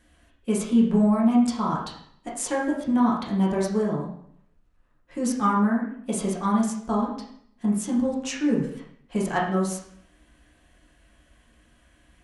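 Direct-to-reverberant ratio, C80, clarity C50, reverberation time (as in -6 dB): -5.0 dB, 7.5 dB, 4.0 dB, 0.65 s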